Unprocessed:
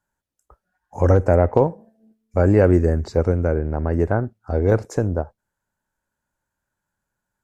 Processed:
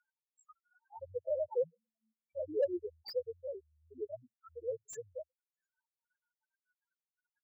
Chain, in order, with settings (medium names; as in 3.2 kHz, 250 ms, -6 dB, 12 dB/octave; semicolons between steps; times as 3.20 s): reverb removal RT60 0.59 s; loudest bins only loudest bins 2; Butterworth band-pass 4.8 kHz, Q 0.51; slew-rate limiter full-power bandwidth 7.3 Hz; trim +13.5 dB